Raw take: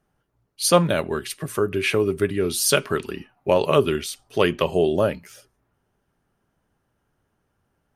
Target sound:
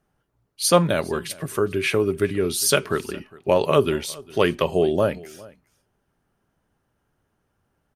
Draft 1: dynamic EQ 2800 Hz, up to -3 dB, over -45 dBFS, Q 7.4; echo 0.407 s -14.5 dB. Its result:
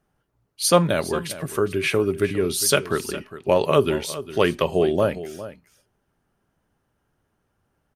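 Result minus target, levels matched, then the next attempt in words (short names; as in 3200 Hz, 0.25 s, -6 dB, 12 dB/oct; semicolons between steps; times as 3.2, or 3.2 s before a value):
echo-to-direct +8 dB
dynamic EQ 2800 Hz, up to -3 dB, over -45 dBFS, Q 7.4; echo 0.407 s -22.5 dB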